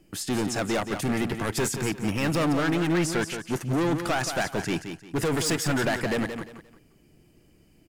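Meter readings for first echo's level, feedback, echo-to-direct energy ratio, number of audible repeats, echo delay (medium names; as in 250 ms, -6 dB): -8.5 dB, 28%, -8.0 dB, 3, 175 ms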